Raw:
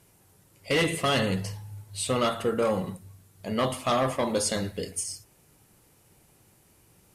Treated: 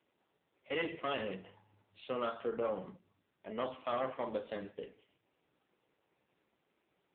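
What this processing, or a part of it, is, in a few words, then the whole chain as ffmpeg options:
telephone: -af "highpass=270,lowpass=3600,volume=0.376" -ar 8000 -c:a libopencore_amrnb -b:a 5900

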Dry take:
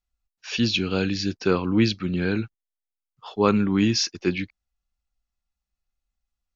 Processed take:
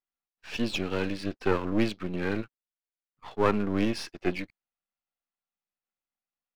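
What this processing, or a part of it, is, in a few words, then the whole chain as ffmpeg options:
crystal radio: -af "highpass=240,lowpass=2700,aeval=exprs='if(lt(val(0),0),0.251*val(0),val(0))':c=same"

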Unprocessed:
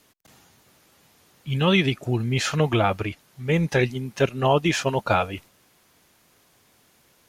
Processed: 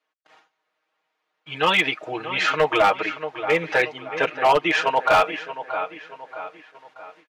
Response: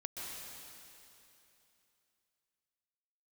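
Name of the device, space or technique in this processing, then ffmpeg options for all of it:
walkie-talkie: -filter_complex "[0:a]lowshelf=f=280:g=-5.5,aecho=1:1:6.4:0.85,asettb=1/sr,asplit=3[s0][s1][s2];[s0]atrim=end=3.704[s3];[s1]atrim=start=3.7:end=4.75,asetpts=PTS-STARTPTS,afade=t=in:d=0.004:c=qsin,afade=t=out:st=1.046:d=0.004:c=qsin,highshelf=f=4200:g=-4.5[s4];[s2]atrim=start=4.746[s5];[s3][s4]acrossfade=d=0.004:c1=hsin:c2=qsin[s6];[s6][s5]acrossfade=d=0.004:c1=qsin:c2=hsin,highpass=560,lowpass=2500,asplit=2[s7][s8];[s8]adelay=629,lowpass=f=4500:p=1,volume=0.251,asplit=2[s9][s10];[s10]adelay=629,lowpass=f=4500:p=1,volume=0.44,asplit=2[s11][s12];[s12]adelay=629,lowpass=f=4500:p=1,volume=0.44,asplit=2[s13][s14];[s14]adelay=629,lowpass=f=4500:p=1,volume=0.44[s15];[s7][s9][s11][s13][s15]amix=inputs=5:normalize=0,asoftclip=type=hard:threshold=0.133,agate=range=0.0891:threshold=0.00158:ratio=16:detection=peak,volume=2.11"

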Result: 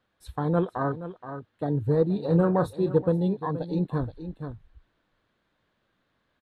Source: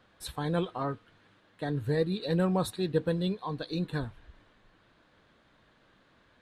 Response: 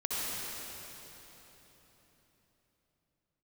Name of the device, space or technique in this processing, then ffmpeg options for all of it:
ducked delay: -filter_complex "[0:a]afwtdn=0.0158,asettb=1/sr,asplit=3[s0][s1][s2];[s0]atrim=end=2.134[s3];[s1]atrim=start=2.13:end=2.98,asetpts=PTS-STARTPTS,afade=t=in:d=0.004:c=qsin,afade=t=out:st=0.846:d=0.004:c=qsin,asplit=2[s4][s5];[s5]adelay=30,volume=0.355[s6];[s4][s6]amix=inputs=2:normalize=0,atrim=end_sample=37485[s7];[s2]atrim=start=2.976[s8];[s3][s7]acrossfade=d=0.004:c1=hsin:c2=qsin[s9];[s9][s8]acrossfade=d=0.004:c1=qsin:c2=hsin,asplit=3[s10][s11][s12];[s11]adelay=474,volume=0.668[s13];[s12]apad=whole_len=303653[s14];[s13][s14]sidechaincompress=threshold=0.0141:ratio=6:attack=6.2:release=1170[s15];[s10][s15]amix=inputs=2:normalize=0,volume=1.88"

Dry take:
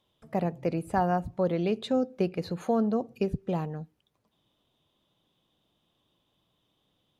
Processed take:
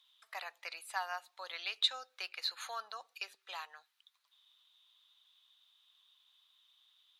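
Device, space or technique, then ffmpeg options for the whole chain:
headphones lying on a table: -filter_complex "[0:a]asettb=1/sr,asplit=3[s0][s1][s2];[s0]atrim=end=0.734[s3];[s1]atrim=start=0.73:end=1.54,asetpts=PTS-STARTPTS,afade=t=in:d=0.004:c=qsin,afade=t=out:st=0.806:d=0.004:c=qsin,equalizer=f=1400:t=o:w=0.93:g=-4.5[s4];[s2]atrim=start=1.536[s5];[s3][s4]acrossfade=d=0.004:c1=hsin:c2=qsin[s6];[s6][s5]acrossfade=d=0.004:c1=qsin:c2=hsin,highpass=f=1200:w=0.5412,highpass=f=1200:w=1.3066,equalizer=f=3900:t=o:w=0.45:g=9.5,volume=1.33"

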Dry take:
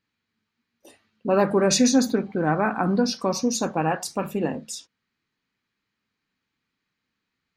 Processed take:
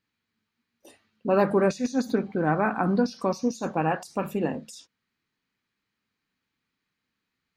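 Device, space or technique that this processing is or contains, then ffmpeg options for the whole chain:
de-esser from a sidechain: -filter_complex "[0:a]asplit=2[s0][s1];[s1]highpass=f=4600:w=0.5412,highpass=f=4600:w=1.3066,apad=whole_len=333415[s2];[s0][s2]sidechaincompress=threshold=0.0126:ratio=8:attack=1.2:release=78,volume=0.841"

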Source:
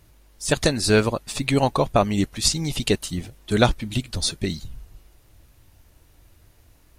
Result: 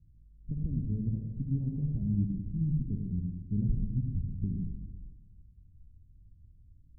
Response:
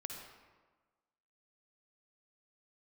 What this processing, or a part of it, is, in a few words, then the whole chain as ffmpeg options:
club heard from the street: -filter_complex "[0:a]alimiter=limit=0.211:level=0:latency=1:release=20,lowpass=f=200:w=0.5412,lowpass=f=200:w=1.3066[s0];[1:a]atrim=start_sample=2205[s1];[s0][s1]afir=irnorm=-1:irlink=0"

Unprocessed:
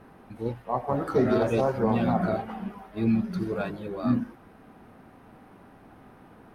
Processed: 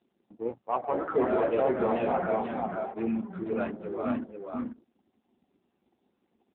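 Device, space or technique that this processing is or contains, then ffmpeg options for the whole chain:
telephone: -filter_complex "[0:a]asettb=1/sr,asplit=3[s0][s1][s2];[s0]atrim=end=1.174[s3];[s1]atrim=start=1.17:end=1.66,asetpts=PTS-STARTPTS,afade=t=in:d=0.004:c=qsin,afade=t=out:st=0.486:d=0.004:c=qsin,lowpass=5100[s4];[s2]atrim=start=1.656[s5];[s3][s4]acrossfade=d=0.004:c1=hsin:c2=qsin[s6];[s6][s5]acrossfade=d=0.004:c1=qsin:c2=hsin,anlmdn=0.631,highpass=340,lowpass=3100,aecho=1:1:490:0.596,asoftclip=type=tanh:threshold=0.126,volume=1.26" -ar 8000 -c:a libopencore_amrnb -b:a 6700

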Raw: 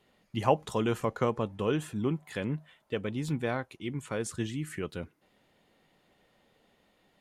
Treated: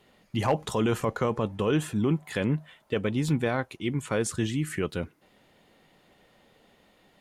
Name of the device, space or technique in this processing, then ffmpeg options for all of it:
clipper into limiter: -af "asoftclip=type=hard:threshold=0.168,alimiter=limit=0.075:level=0:latency=1:release=12,volume=2.11"

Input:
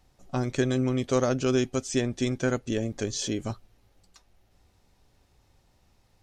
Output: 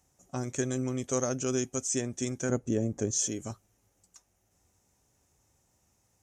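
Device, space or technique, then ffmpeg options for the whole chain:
budget condenser microphone: -filter_complex "[0:a]highpass=68,highshelf=f=5300:t=q:w=3:g=7,asettb=1/sr,asplit=3[s0][s1][s2];[s0]atrim=end=2.494[s3];[s1]atrim=start=2.49:end=3.11,asetpts=PTS-STARTPTS,afade=t=in:d=0.004:c=qsin,afade=t=out:st=0.616:d=0.004:c=qsin,tiltshelf=f=1200:g=7[s4];[s2]atrim=start=3.106[s5];[s3][s4]acrossfade=d=0.004:c1=hsin:c2=qsin[s6];[s6][s5]acrossfade=d=0.004:c1=qsin:c2=hsin,volume=0.501"

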